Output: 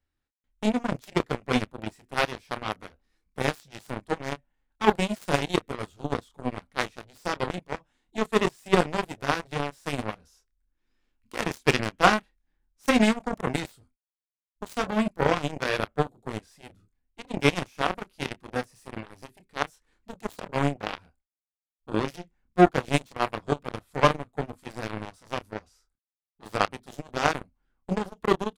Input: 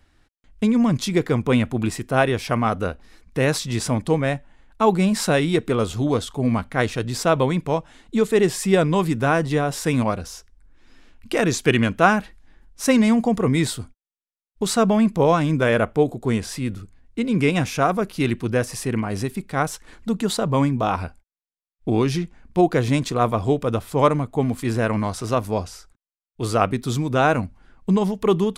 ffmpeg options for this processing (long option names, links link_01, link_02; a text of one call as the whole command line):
ffmpeg -i in.wav -filter_complex "[0:a]bandreject=frequency=650:width=14,asplit=2[link_01][link_02];[link_02]adelay=28,volume=-6dB[link_03];[link_01][link_03]amix=inputs=2:normalize=0,aeval=exprs='0.944*(cos(1*acos(clip(val(0)/0.944,-1,1)))-cos(1*PI/2))+0.0596*(cos(3*acos(clip(val(0)/0.944,-1,1)))-cos(3*PI/2))+0.119*(cos(7*acos(clip(val(0)/0.944,-1,1)))-cos(7*PI/2))':channel_layout=same,volume=-1dB" out.wav